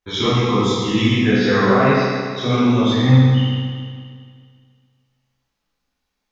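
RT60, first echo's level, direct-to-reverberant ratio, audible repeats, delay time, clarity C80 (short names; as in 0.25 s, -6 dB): 2.0 s, none, -11.5 dB, none, none, -1.5 dB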